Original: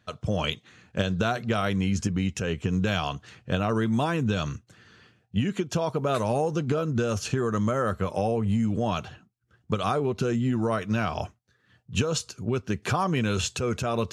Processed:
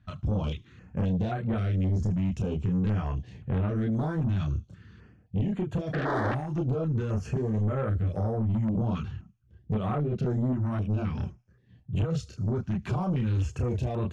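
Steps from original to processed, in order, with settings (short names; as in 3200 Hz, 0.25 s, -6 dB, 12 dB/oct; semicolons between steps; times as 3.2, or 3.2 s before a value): chorus voices 4, 0.36 Hz, delay 30 ms, depth 2.9 ms; in parallel at +2 dB: compressor, threshold -32 dBFS, peak gain reduction 10.5 dB; on the sum: painted sound noise, 5.93–6.35, 270–1900 Hz -19 dBFS; RIAA curve playback; soft clip -16 dBFS, distortion -11 dB; thin delay 75 ms, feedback 59%, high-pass 5300 Hz, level -17 dB; stepped notch 3.8 Hz 470–5300 Hz; gain -6.5 dB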